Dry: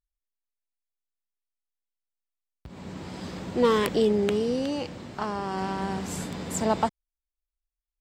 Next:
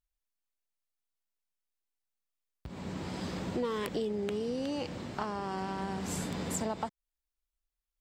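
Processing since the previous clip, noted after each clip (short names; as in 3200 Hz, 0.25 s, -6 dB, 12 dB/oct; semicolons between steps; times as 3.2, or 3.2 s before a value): compressor 6:1, threshold -31 dBFS, peak gain reduction 13.5 dB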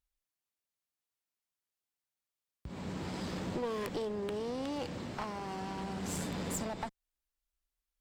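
one-sided clip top -37 dBFS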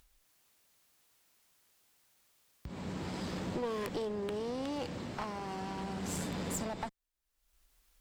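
upward compressor, threshold -52 dBFS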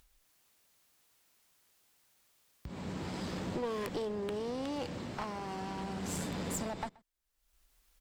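outdoor echo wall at 22 m, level -24 dB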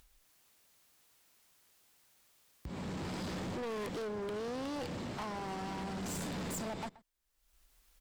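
hard clip -39 dBFS, distortion -10 dB; gain +2 dB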